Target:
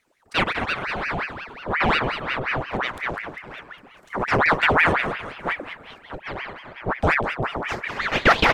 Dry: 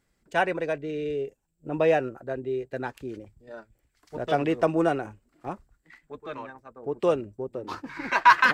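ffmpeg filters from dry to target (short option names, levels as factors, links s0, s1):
-filter_complex "[0:a]asettb=1/sr,asplit=3[s0][s1][s2];[s0]atrim=end=7.634[s3];[s1]atrim=start=7.63:end=8.04,asetpts=PTS-STARTPTS,afade=t=in:d=0.004:c=qsin,afade=t=out:st=0.406:d=0.004:c=qsin,aecho=1:1:5.8:0.76,atrim=end_sample=18081[s4];[s2]atrim=start=8.036[s5];[s3][s4]acrossfade=d=0.004:c1=hsin:c2=qsin[s6];[s6][s5]acrossfade=d=0.004:c1=qsin:c2=hsin,asplit=2[s7][s8];[s8]asoftclip=type=tanh:threshold=0.0794,volume=0.282[s9];[s7][s9]amix=inputs=2:normalize=0,asplit=8[s10][s11][s12][s13][s14][s15][s16][s17];[s11]adelay=201,afreqshift=120,volume=0.355[s18];[s12]adelay=402,afreqshift=240,volume=0.202[s19];[s13]adelay=603,afreqshift=360,volume=0.115[s20];[s14]adelay=804,afreqshift=480,volume=0.0661[s21];[s15]adelay=1005,afreqshift=600,volume=0.0376[s22];[s16]adelay=1206,afreqshift=720,volume=0.0214[s23];[s17]adelay=1407,afreqshift=840,volume=0.0122[s24];[s10][s18][s19][s20][s21][s22][s23][s24]amix=inputs=8:normalize=0,asubboost=boost=8.5:cutoff=180,aeval=exprs='val(0)*sin(2*PI*1200*n/s+1200*0.8/5.6*sin(2*PI*5.6*n/s))':c=same,volume=1.58"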